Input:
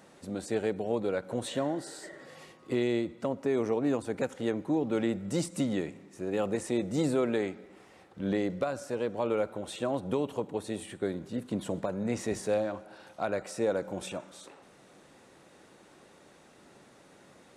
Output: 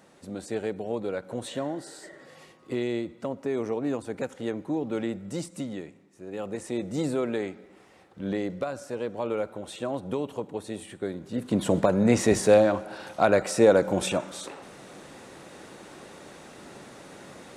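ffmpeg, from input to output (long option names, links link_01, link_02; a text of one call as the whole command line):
ffmpeg -i in.wav -af "volume=19dB,afade=type=out:start_time=4.94:duration=1.19:silence=0.398107,afade=type=in:start_time=6.13:duration=0.75:silence=0.375837,afade=type=in:start_time=11.24:duration=0.54:silence=0.281838" out.wav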